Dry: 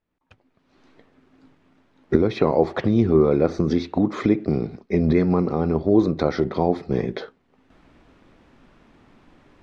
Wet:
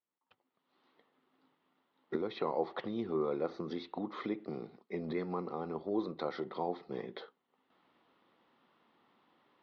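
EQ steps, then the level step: cabinet simulation 240–3900 Hz, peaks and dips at 280 Hz -5 dB, 410 Hz -3 dB, 630 Hz -6 dB, 1.6 kHz -8 dB, 2.4 kHz -9 dB; bass shelf 500 Hz -9 dB; -7.0 dB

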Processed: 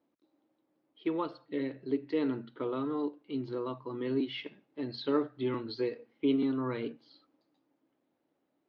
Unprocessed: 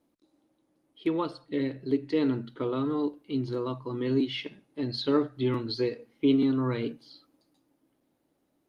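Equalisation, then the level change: high-pass 300 Hz 6 dB/octave; distance through air 210 m; -1.5 dB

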